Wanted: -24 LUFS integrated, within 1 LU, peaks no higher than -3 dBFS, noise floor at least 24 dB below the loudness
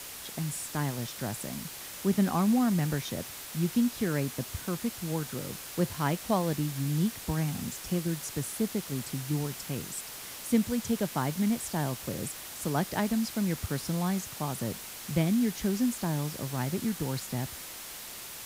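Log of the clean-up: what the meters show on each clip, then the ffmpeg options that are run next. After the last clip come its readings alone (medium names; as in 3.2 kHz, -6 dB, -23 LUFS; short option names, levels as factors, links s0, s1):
noise floor -43 dBFS; noise floor target -56 dBFS; loudness -31.5 LUFS; peak level -13.0 dBFS; loudness target -24.0 LUFS
-> -af "afftdn=nr=13:nf=-43"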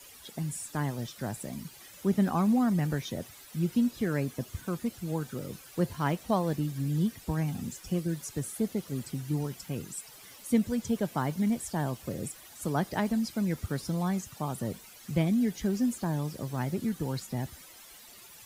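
noise floor -51 dBFS; noise floor target -56 dBFS
-> -af "afftdn=nr=6:nf=-51"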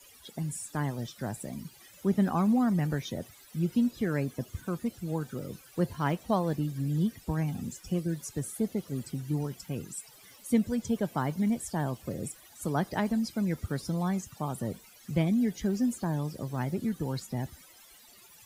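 noise floor -55 dBFS; noise floor target -56 dBFS
-> -af "afftdn=nr=6:nf=-55"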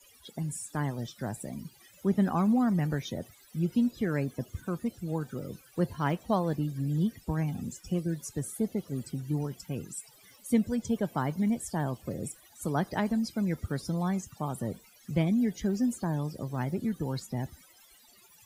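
noise floor -59 dBFS; loudness -31.5 LUFS; peak level -14.0 dBFS; loudness target -24.0 LUFS
-> -af "volume=2.37"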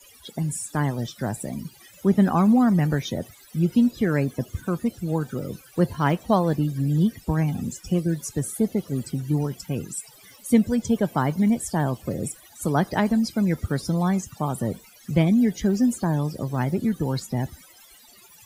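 loudness -24.0 LUFS; peak level -6.5 dBFS; noise floor -51 dBFS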